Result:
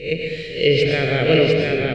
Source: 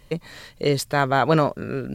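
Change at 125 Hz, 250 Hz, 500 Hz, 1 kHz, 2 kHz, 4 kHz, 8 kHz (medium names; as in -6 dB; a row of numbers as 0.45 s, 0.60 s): +3.5 dB, +2.5 dB, +6.5 dB, -8.5 dB, +6.0 dB, +10.0 dB, no reading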